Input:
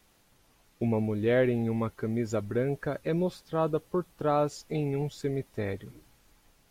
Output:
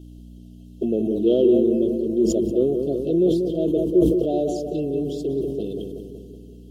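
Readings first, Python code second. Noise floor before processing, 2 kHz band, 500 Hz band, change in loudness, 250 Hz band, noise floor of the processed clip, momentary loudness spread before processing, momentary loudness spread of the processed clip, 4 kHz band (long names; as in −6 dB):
−65 dBFS, below −15 dB, +9.0 dB, +8.5 dB, +10.5 dB, −43 dBFS, 8 LU, 12 LU, +5.5 dB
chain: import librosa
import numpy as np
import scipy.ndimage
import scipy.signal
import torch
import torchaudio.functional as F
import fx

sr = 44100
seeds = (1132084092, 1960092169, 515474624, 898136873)

p1 = scipy.signal.sosfilt(scipy.signal.butter(4, 160.0, 'highpass', fs=sr, output='sos'), x)
p2 = fx.env_flanger(p1, sr, rest_ms=8.0, full_db=-25.5)
p3 = 10.0 ** (-30.5 / 20.0) * np.tanh(p2 / 10.0 ** (-30.5 / 20.0))
p4 = p2 + (p3 * 10.0 ** (-4.0 / 20.0))
p5 = fx.add_hum(p4, sr, base_hz=60, snr_db=12)
p6 = fx.brickwall_bandstop(p5, sr, low_hz=750.0, high_hz=2600.0)
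p7 = fx.small_body(p6, sr, hz=(350.0, 3200.0), ring_ms=35, db=13)
p8 = p7 + fx.echo_filtered(p7, sr, ms=188, feedback_pct=63, hz=1400.0, wet_db=-6, dry=0)
p9 = fx.sustainer(p8, sr, db_per_s=39.0)
y = p9 * 10.0 ** (-1.0 / 20.0)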